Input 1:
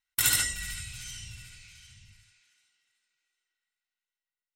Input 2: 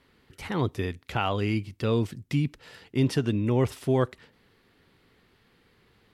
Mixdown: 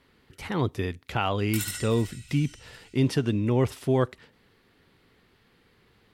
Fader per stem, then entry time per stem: -9.0, +0.5 dB; 1.35, 0.00 s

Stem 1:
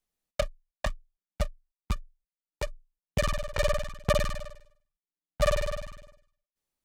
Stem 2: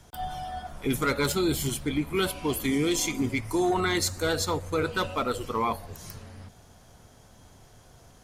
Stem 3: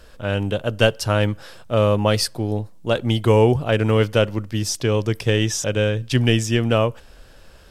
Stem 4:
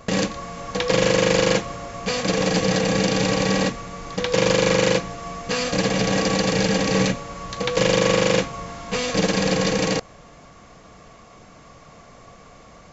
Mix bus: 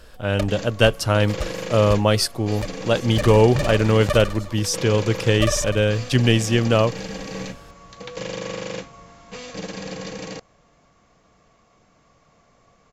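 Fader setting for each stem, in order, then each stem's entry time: +1.0, -18.0, +0.5, -12.0 dB; 0.00, 0.00, 0.00, 0.40 s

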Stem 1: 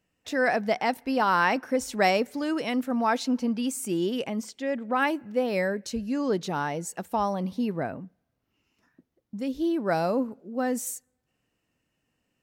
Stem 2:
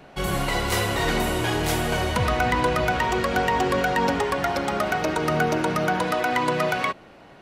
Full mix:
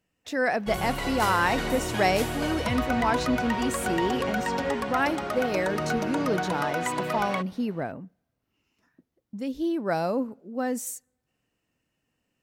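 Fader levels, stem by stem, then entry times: -1.0, -6.5 dB; 0.00, 0.50 s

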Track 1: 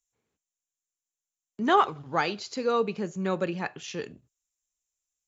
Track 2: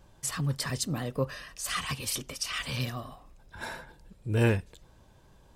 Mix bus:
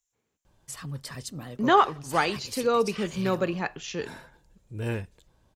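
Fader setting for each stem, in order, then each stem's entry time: +2.0, -6.5 dB; 0.00, 0.45 s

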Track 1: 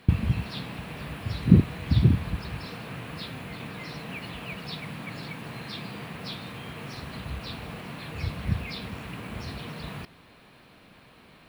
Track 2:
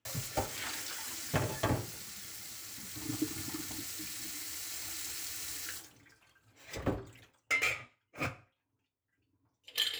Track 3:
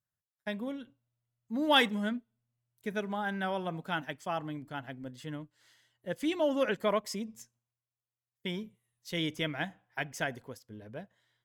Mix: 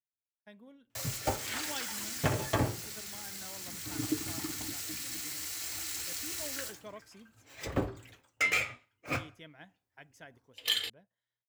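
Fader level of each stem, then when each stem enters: off, +2.5 dB, -18.0 dB; off, 0.90 s, 0.00 s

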